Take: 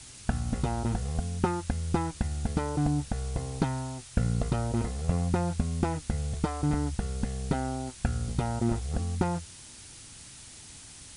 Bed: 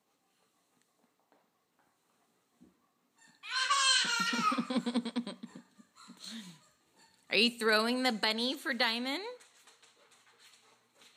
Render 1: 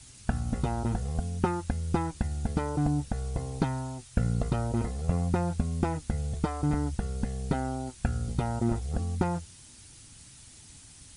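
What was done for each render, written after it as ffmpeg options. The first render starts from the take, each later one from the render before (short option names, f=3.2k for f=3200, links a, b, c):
-af "afftdn=nr=6:nf=-48"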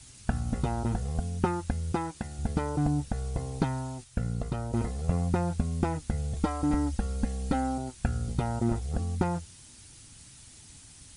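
-filter_complex "[0:a]asettb=1/sr,asplit=3[a][b][c];[a]atrim=end=1.924[d];[b]atrim=start=1.92:end=2.39,asetpts=PTS-STARTPTS,afade=t=in:d=0.004:c=qsin,afade=t=out:st=0.466:d=0.004:c=qsin,highpass=f=220:p=1[e];[c]atrim=start=2.386[f];[d][e]acrossfade=d=0.004:c1=hsin:c2=qsin[g];[g][f]acrossfade=d=0.004:c1=qsin:c2=hsin,asettb=1/sr,asplit=3[h][i][j];[h]atrim=end=6.364[k];[i]atrim=start=6.36:end=7.78,asetpts=PTS-STARTPTS,afade=t=in:d=0.004:c=qsin,afade=t=out:st=1.416:d=0.004:c=qsin,aecho=1:1:3.7:0.65,atrim=end_sample=62622[l];[j]atrim=start=7.776[m];[k][l]acrossfade=d=0.004:c1=hsin:c2=qsin[n];[n][m]acrossfade=d=0.004:c1=qsin:c2=hsin,asplit=3[o][p][q];[o]atrim=end=4.042[r];[p]atrim=start=4.038:end=4.732,asetpts=PTS-STARTPTS,volume=-4dB[s];[q]atrim=start=4.728[t];[r][s]acrossfade=d=0.004:c1=hsin:c2=hsin[u];[u][t]acrossfade=d=0.004:c1=hsin:c2=hsin"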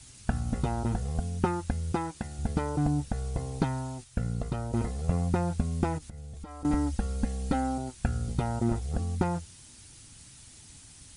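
-filter_complex "[0:a]asettb=1/sr,asplit=3[a][b][c];[a]atrim=end=5.984[d];[b]atrim=start=5.98:end=6.65,asetpts=PTS-STARTPTS,afade=t=in:d=0.004:c=qsin,afade=t=out:st=0.666:d=0.004:c=qsin,acompressor=threshold=-40dB:ratio=5:attack=3.2:release=140:knee=1:detection=peak[e];[c]atrim=start=6.646[f];[d][e]acrossfade=d=0.004:c1=hsin:c2=qsin[g];[g][f]acrossfade=d=0.004:c1=qsin:c2=hsin"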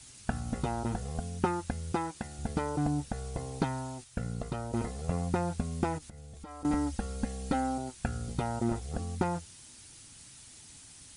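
-af "lowshelf=f=160:g=-8"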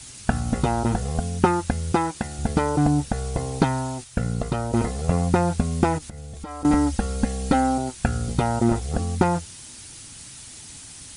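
-af "volume=10.5dB"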